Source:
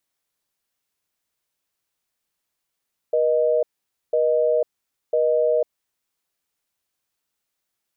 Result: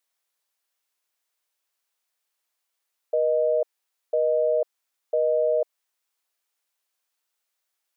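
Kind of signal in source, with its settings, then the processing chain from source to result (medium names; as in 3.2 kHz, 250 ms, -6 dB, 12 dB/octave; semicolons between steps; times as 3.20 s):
call progress tone busy tone, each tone -19 dBFS 2.50 s
high-pass 520 Hz 12 dB/octave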